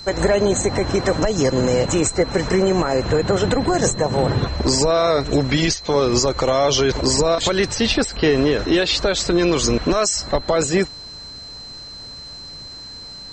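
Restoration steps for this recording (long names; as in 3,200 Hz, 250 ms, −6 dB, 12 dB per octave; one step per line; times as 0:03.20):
notch filter 4,100 Hz, Q 30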